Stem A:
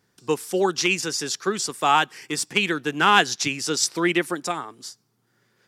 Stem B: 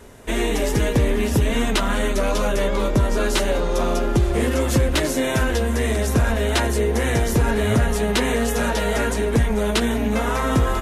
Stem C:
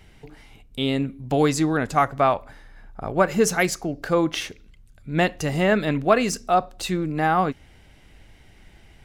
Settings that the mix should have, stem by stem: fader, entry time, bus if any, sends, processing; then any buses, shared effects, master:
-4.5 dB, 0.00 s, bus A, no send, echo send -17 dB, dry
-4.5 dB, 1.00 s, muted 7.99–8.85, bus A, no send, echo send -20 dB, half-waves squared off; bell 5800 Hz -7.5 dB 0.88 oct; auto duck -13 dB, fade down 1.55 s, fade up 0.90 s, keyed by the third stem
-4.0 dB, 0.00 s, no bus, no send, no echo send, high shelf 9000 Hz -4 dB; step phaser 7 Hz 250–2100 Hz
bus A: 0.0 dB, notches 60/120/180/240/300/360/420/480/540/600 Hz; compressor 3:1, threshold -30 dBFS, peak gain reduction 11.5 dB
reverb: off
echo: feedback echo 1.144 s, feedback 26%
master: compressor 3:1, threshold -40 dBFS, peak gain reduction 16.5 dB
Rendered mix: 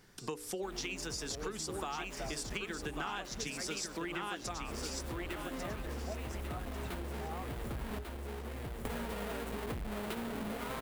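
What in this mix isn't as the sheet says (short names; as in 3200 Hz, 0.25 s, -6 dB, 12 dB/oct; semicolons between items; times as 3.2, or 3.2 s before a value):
stem A -4.5 dB -> +5.0 dB; stem B: entry 1.00 s -> 0.35 s; stem C -4.0 dB -> -15.0 dB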